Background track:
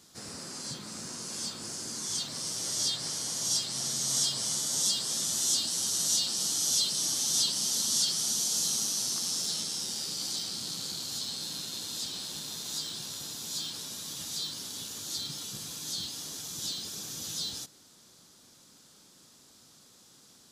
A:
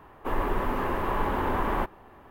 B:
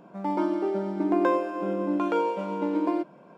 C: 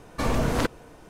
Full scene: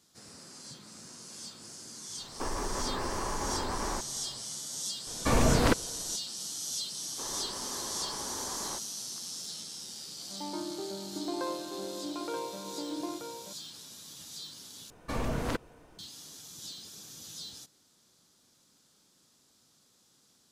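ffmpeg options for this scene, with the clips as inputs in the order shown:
-filter_complex "[1:a]asplit=2[s0][s1];[3:a]asplit=2[s2][s3];[0:a]volume=0.376[s4];[s0]acompressor=threshold=0.0398:ratio=6:attack=3.2:release=140:knee=1:detection=peak[s5];[s1]highpass=f=160:p=1[s6];[2:a]aecho=1:1:930:0.473[s7];[s4]asplit=2[s8][s9];[s8]atrim=end=14.904[s10];[s3]atrim=end=1.09,asetpts=PTS-STARTPTS,volume=0.398[s11];[s9]atrim=start=15.986[s12];[s5]atrim=end=2.3,asetpts=PTS-STARTPTS,volume=0.841,afade=t=in:d=0.1,afade=t=out:st=2.2:d=0.1,adelay=2150[s13];[s2]atrim=end=1.09,asetpts=PTS-STARTPTS,afade=t=in:d=0.004:c=hsin,afade=t=out:st=1.086:d=0.004:c=hsin,adelay=5070[s14];[s6]atrim=end=2.3,asetpts=PTS-STARTPTS,volume=0.211,afade=t=in:d=0.004:c=hsin,afade=t=out:st=2.296:d=0.004:c=hsin,adelay=6930[s15];[s7]atrim=end=3.37,asetpts=PTS-STARTPTS,volume=0.251,afade=t=in:d=0.004:c=hsin,afade=t=out:st=3.366:d=0.004:c=hsin,adelay=10160[s16];[s10][s11]acrossfade=d=0.004:c1=hsin:c2=hsin[s17];[s17][s12]acrossfade=d=0.004:c1=hsin:c2=hsin[s18];[s18][s13][s14][s15][s16]amix=inputs=5:normalize=0"

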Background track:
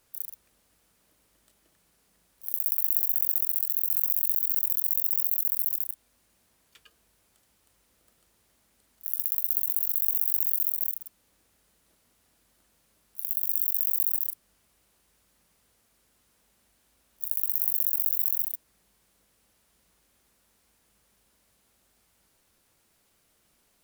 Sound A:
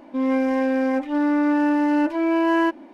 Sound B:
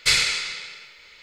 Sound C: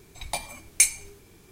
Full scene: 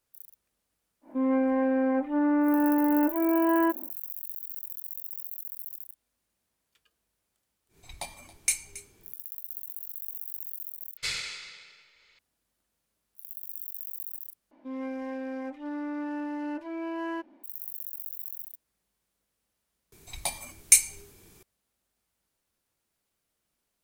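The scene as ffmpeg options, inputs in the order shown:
-filter_complex "[1:a]asplit=2[s0][s1];[3:a]asplit=2[s2][s3];[0:a]volume=0.237[s4];[s0]lowpass=1600[s5];[s2]aecho=1:1:275:0.126[s6];[s3]highshelf=f=6300:g=8[s7];[s4]asplit=3[s8][s9][s10];[s8]atrim=end=10.974[s11];[2:a]atrim=end=1.22,asetpts=PTS-STARTPTS,volume=0.211[s12];[s9]atrim=start=12.186:end=14.514[s13];[s1]atrim=end=2.93,asetpts=PTS-STARTPTS,volume=0.188[s14];[s10]atrim=start=17.436[s15];[s5]atrim=end=2.93,asetpts=PTS-STARTPTS,volume=0.631,afade=t=in:d=0.1,afade=t=out:st=2.83:d=0.1,adelay=1010[s16];[s6]atrim=end=1.51,asetpts=PTS-STARTPTS,volume=0.422,afade=t=in:d=0.1,afade=t=out:st=1.41:d=0.1,adelay=7680[s17];[s7]atrim=end=1.51,asetpts=PTS-STARTPTS,volume=0.668,afade=t=in:d=0.004:c=hsin,afade=t=out:st=1.506:d=0.004:c=hsin,adelay=19920[s18];[s11][s12]acrossfade=d=0.004:c1=hsin:c2=hsin[s19];[s19][s13]acrossfade=d=0.004:c1=hsin:c2=hsin[s20];[s20][s14]acrossfade=d=0.004:c1=hsin:c2=hsin[s21];[s21][s15]acrossfade=d=0.004:c1=hsin:c2=hsin[s22];[s22][s16][s17][s18]amix=inputs=4:normalize=0"

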